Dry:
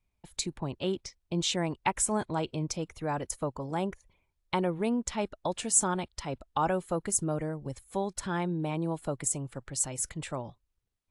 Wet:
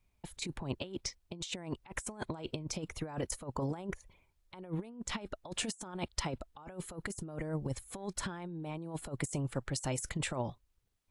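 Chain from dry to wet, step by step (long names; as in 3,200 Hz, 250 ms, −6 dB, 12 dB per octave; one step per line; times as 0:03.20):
compressor whose output falls as the input rises −36 dBFS, ratio −0.5
level −1.5 dB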